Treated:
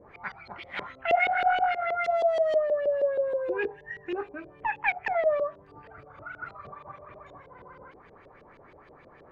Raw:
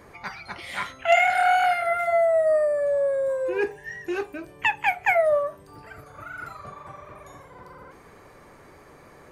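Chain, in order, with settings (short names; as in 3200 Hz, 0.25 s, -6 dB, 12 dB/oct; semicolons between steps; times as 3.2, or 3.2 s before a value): 2.04–2.56 switching spikes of -19.5 dBFS; downsampling 22050 Hz; in parallel at -11.5 dB: wavefolder -22 dBFS; on the sum: LFO low-pass saw up 6.3 Hz 430–3800 Hz; gain -8 dB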